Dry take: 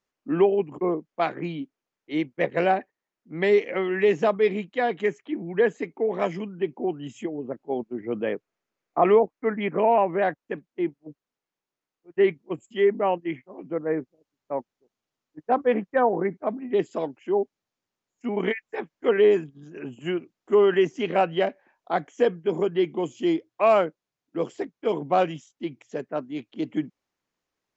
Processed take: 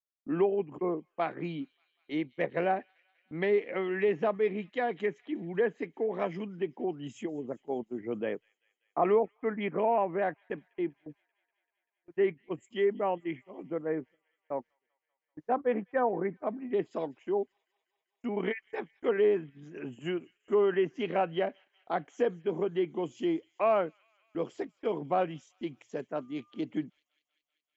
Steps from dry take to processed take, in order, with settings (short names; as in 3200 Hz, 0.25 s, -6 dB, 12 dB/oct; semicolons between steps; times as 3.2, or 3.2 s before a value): gate with hold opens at -43 dBFS; treble ducked by the level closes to 2600 Hz, closed at -19 dBFS; 26.16–26.6 whine 1200 Hz -60 dBFS; in parallel at -2.5 dB: compressor, threshold -30 dBFS, peak gain reduction 16 dB; on the sum: thin delay 0.194 s, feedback 72%, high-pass 3100 Hz, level -20.5 dB; gain -8.5 dB